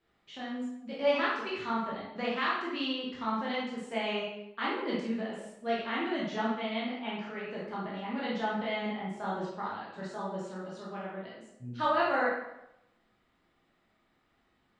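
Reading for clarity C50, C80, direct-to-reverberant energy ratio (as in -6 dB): 0.5 dB, 4.0 dB, -6.5 dB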